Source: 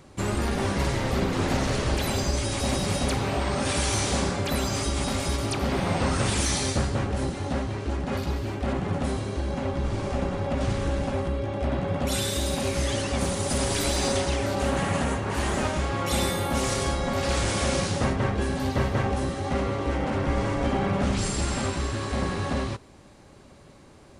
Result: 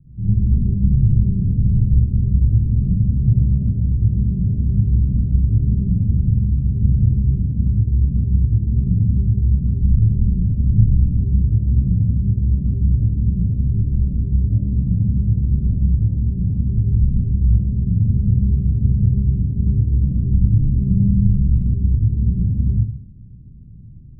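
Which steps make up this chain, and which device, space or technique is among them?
club heard from the street (brickwall limiter −17.5 dBFS, peak gain reduction 5 dB; low-pass filter 170 Hz 24 dB per octave; convolution reverb RT60 0.70 s, pre-delay 39 ms, DRR −8 dB)
level +5 dB

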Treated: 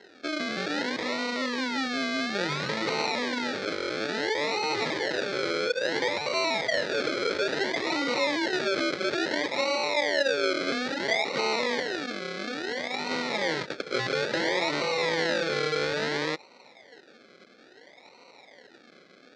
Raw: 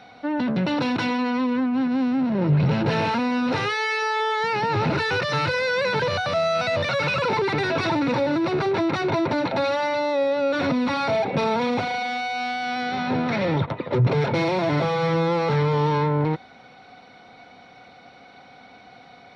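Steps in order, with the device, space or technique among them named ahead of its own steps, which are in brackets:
circuit-bent sampling toy (sample-and-hold swept by an LFO 37×, swing 60% 0.59 Hz; loudspeaker in its box 450–5,300 Hz, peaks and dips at 730 Hz −10 dB, 1,100 Hz −6 dB, 2,000 Hz +5 dB, 2,800 Hz −6 dB, 4,100 Hz +5 dB)

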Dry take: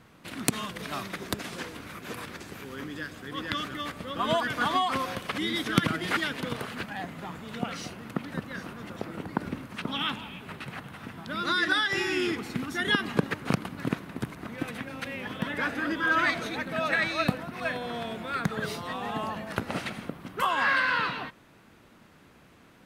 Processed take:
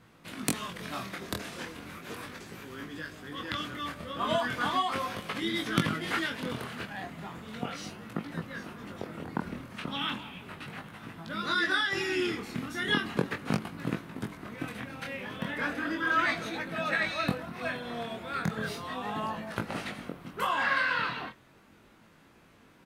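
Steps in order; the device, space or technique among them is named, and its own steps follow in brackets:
double-tracked vocal (double-tracking delay 24 ms −11 dB; chorus effect 0.36 Hz, delay 18 ms, depth 7.8 ms)

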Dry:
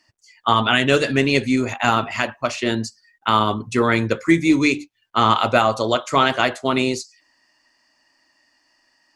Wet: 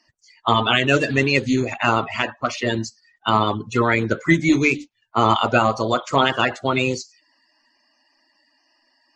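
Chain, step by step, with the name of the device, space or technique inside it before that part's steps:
clip after many re-uploads (low-pass filter 7,300 Hz 24 dB per octave; spectral magnitudes quantised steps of 30 dB)

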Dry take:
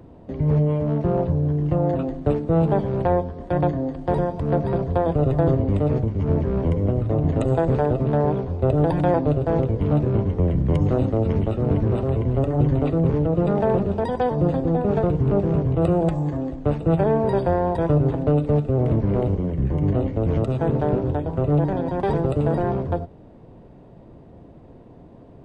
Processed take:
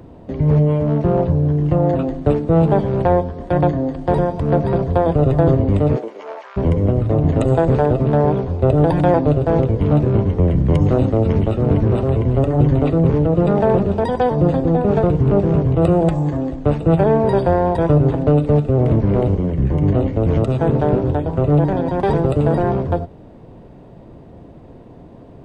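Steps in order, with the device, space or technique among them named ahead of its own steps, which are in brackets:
0:05.95–0:06.56: high-pass filter 280 Hz → 1,100 Hz 24 dB per octave
exciter from parts (in parallel at −9 dB: high-pass filter 2,200 Hz 6 dB per octave + soft clipping −39 dBFS, distortion −6 dB)
on the sum: level +5 dB

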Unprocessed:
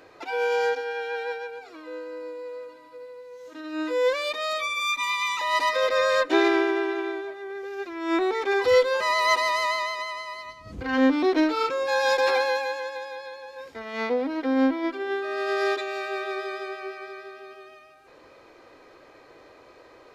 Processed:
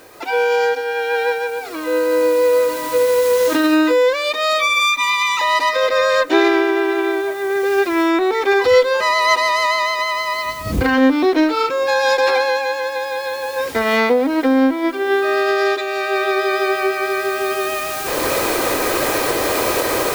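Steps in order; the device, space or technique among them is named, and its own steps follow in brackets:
cheap recorder with automatic gain (white noise bed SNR 31 dB; camcorder AGC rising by 11 dB per second)
level +6.5 dB

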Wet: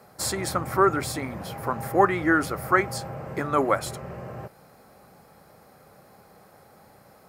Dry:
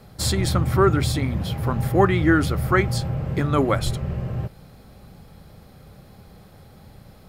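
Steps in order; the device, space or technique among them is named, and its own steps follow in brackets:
filter by subtraction (in parallel: low-pass filter 810 Hz 12 dB per octave + polarity inversion)
on the sum: parametric band 3,400 Hz −10.5 dB 0.85 octaves

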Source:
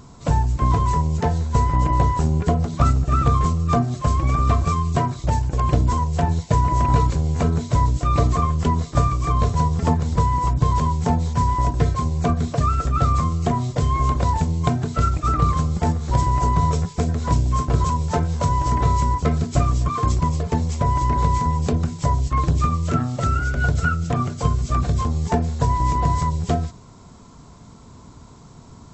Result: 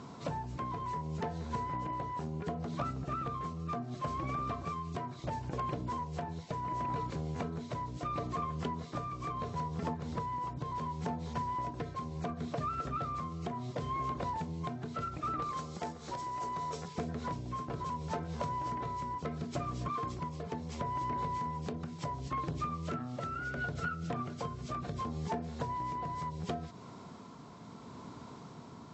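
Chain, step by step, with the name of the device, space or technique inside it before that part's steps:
AM radio (band-pass filter 170–4,300 Hz; downward compressor 6 to 1, threshold −33 dBFS, peak gain reduction 16 dB; soft clipping −24 dBFS, distortion −24 dB; amplitude tremolo 0.71 Hz, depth 28%)
0:15.42–0:16.88: bass and treble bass −8 dB, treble +8 dB

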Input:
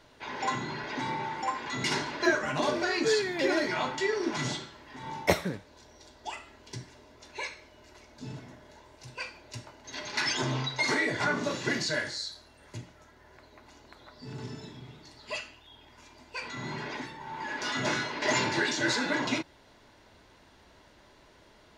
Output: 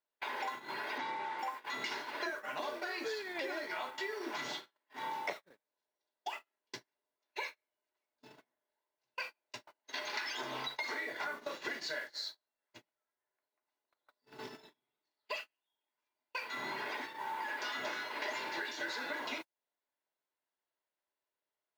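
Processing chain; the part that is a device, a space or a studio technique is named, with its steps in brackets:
baby monitor (band-pass filter 470–4,500 Hz; downward compressor 10 to 1, threshold −42 dBFS, peak gain reduction 22 dB; white noise bed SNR 22 dB; noise gate −47 dBFS, range −40 dB)
0:00.98–0:01.39: low-pass filter 6,500 Hz 12 dB per octave
level +5.5 dB

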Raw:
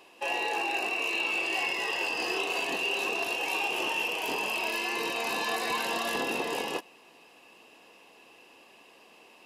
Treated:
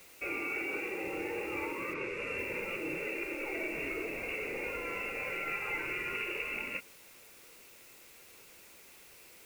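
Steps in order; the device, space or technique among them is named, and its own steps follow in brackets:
scrambled radio voice (band-pass filter 300–2,700 Hz; voice inversion scrambler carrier 3,100 Hz; white noise bed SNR 18 dB)
0:01.93–0:02.37: low-pass filter 4,800 Hz → 11,000 Hz 12 dB per octave
level −4.5 dB

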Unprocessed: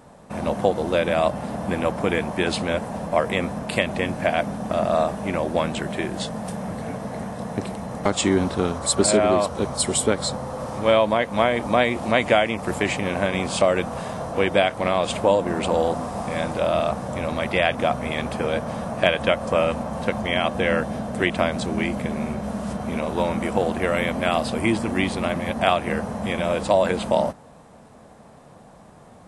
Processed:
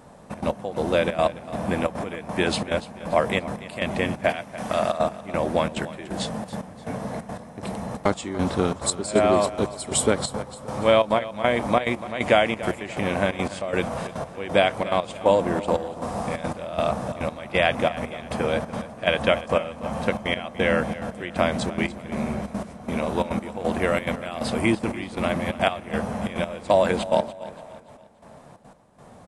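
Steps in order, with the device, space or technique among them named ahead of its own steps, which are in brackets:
0:04.29–0:04.98: tilt shelving filter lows −5 dB, about 720 Hz
delay with a band-pass on its return 229 ms, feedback 73%, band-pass 1,200 Hz, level −21.5 dB
trance gate with a delay (gate pattern "xxxx.x..." 177 BPM −12 dB; repeating echo 289 ms, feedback 40%, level −16 dB)

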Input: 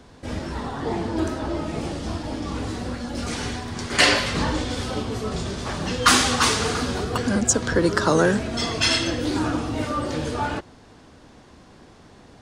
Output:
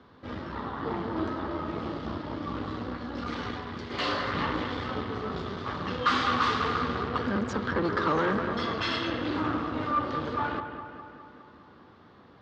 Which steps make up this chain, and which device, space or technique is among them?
analogue delay pedal into a guitar amplifier (bucket-brigade delay 205 ms, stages 4,096, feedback 61%, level −9 dB; tube saturation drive 20 dB, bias 0.7; loudspeaker in its box 89–3,900 Hz, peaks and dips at 150 Hz −3 dB, 680 Hz −4 dB, 1,200 Hz +8 dB, 2,500 Hz −5 dB)
0:03.76–0:04.32: parametric band 1,000 Hz → 3,100 Hz −8.5 dB 0.77 octaves
level −2 dB

